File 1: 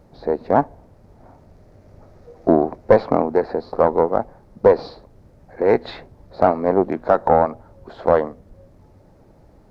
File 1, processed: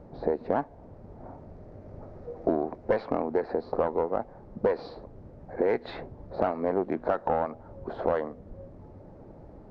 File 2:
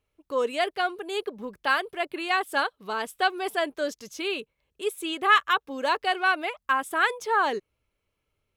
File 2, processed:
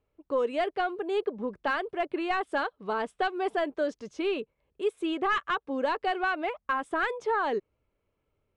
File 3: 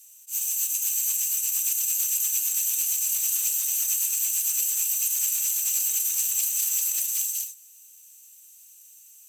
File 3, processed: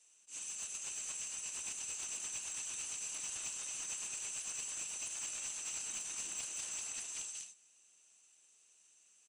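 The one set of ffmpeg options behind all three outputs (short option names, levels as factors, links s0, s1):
-filter_complex "[0:a]aresample=22050,aresample=44100,acrossover=split=1700[s0][s1];[s0]acompressor=threshold=0.0447:ratio=6[s2];[s2][s1]amix=inputs=2:normalize=0,asplit=2[s3][s4];[s4]highpass=f=720:p=1,volume=3.55,asoftclip=type=tanh:threshold=0.316[s5];[s3][s5]amix=inputs=2:normalize=0,lowpass=f=1300:p=1,volume=0.501,tiltshelf=f=670:g=6.5"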